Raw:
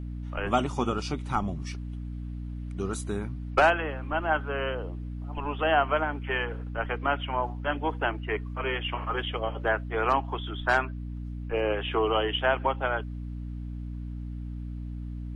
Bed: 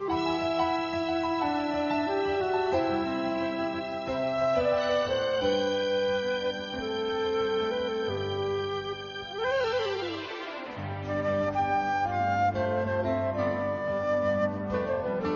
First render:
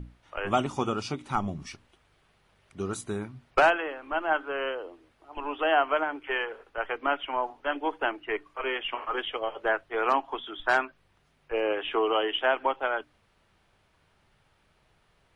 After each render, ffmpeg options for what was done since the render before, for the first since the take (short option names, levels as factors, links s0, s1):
-af "bandreject=f=60:t=h:w=6,bandreject=f=120:t=h:w=6,bandreject=f=180:t=h:w=6,bandreject=f=240:t=h:w=6,bandreject=f=300:t=h:w=6"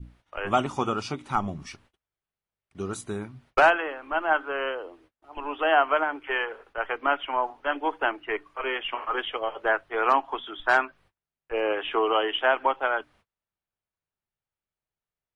-af "agate=range=0.0355:threshold=0.00141:ratio=16:detection=peak,adynamicequalizer=threshold=0.0224:dfrequency=1200:dqfactor=0.72:tfrequency=1200:tqfactor=0.72:attack=5:release=100:ratio=0.375:range=2:mode=boostabove:tftype=bell"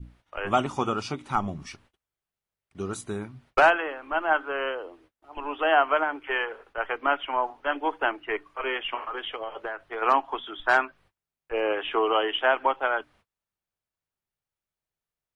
-filter_complex "[0:a]asplit=3[s0][s1][s2];[s0]afade=t=out:st=9.01:d=0.02[s3];[s1]acompressor=threshold=0.0355:ratio=6:attack=3.2:release=140:knee=1:detection=peak,afade=t=in:st=9.01:d=0.02,afade=t=out:st=10.01:d=0.02[s4];[s2]afade=t=in:st=10.01:d=0.02[s5];[s3][s4][s5]amix=inputs=3:normalize=0"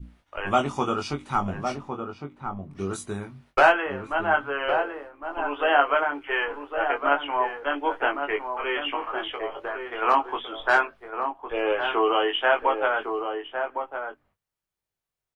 -filter_complex "[0:a]asplit=2[s0][s1];[s1]adelay=21,volume=0.596[s2];[s0][s2]amix=inputs=2:normalize=0,asplit=2[s3][s4];[s4]adelay=1108,volume=0.501,highshelf=f=4000:g=-24.9[s5];[s3][s5]amix=inputs=2:normalize=0"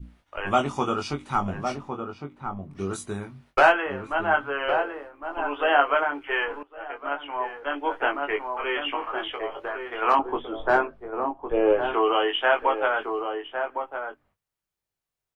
-filter_complex "[0:a]asettb=1/sr,asplit=3[s0][s1][s2];[s0]atrim=end=10.194[s3];[s1]atrim=start=10.19:end=11.94,asetpts=PTS-STARTPTS,afade=t=in:d=0.004:c=qsin,afade=t=out:st=1.746:d=0.004:c=qsin,tiltshelf=f=890:g=10[s4];[s2]atrim=start=11.936[s5];[s3][s4]acrossfade=d=0.004:c1=hsin:c2=qsin[s6];[s6][s5]acrossfade=d=0.004:c1=qsin:c2=hsin,asplit=2[s7][s8];[s7]atrim=end=6.63,asetpts=PTS-STARTPTS,afade=t=out:st=6.626:d=0.004:c=hsin:silence=0.125893[s9];[s8]atrim=start=6.63,asetpts=PTS-STARTPTS,afade=t=in:d=1.47:silence=0.125893[s10];[s9][s10]concat=n=2:v=0:a=1"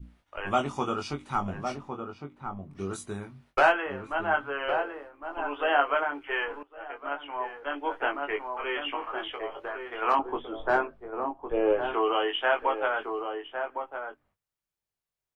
-af "volume=0.631"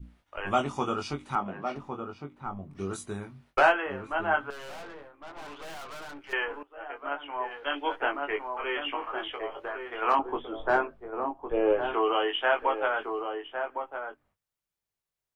-filter_complex "[0:a]asettb=1/sr,asplit=3[s0][s1][s2];[s0]atrim=end=1.354[s3];[s1]atrim=start=1.35:end=1.76,asetpts=PTS-STARTPTS,afade=t=in:d=0.004:c=qsin,afade=t=out:st=0.406:d=0.004:c=qsin,acrossover=split=170 3800:gain=0.0708 1 0.0891[s4][s5][s6];[s4][s5][s6]amix=inputs=3:normalize=0[s7];[s2]atrim=start=1.756[s8];[s3][s7]acrossfade=d=0.004:c1=hsin:c2=qsin[s9];[s9][s8]acrossfade=d=0.004:c1=qsin:c2=hsin,asettb=1/sr,asplit=3[s10][s11][s12];[s10]atrim=end=4.504[s13];[s11]atrim=start=4.5:end=6.33,asetpts=PTS-STARTPTS,afade=t=in:d=0.004:c=qsin,afade=t=out:st=1.826:d=0.004:c=qsin,aeval=exprs='(tanh(112*val(0)+0.6)-tanh(0.6))/112':c=same[s14];[s12]atrim=start=6.326[s15];[s13][s14]acrossfade=d=0.004:c1=hsin:c2=qsin[s16];[s16][s15]acrossfade=d=0.004:c1=qsin:c2=hsin,asettb=1/sr,asplit=3[s17][s18][s19];[s17]atrim=end=7.514[s20];[s18]atrim=start=7.51:end=7.96,asetpts=PTS-STARTPTS,afade=t=in:d=0.004:c=qsin,afade=t=out:st=0.446:d=0.004:c=qsin,equalizer=f=3500:t=o:w=1.2:g=10.5[s21];[s19]atrim=start=7.956[s22];[s20][s21]acrossfade=d=0.004:c1=hsin:c2=qsin[s23];[s23][s22]acrossfade=d=0.004:c1=qsin:c2=hsin"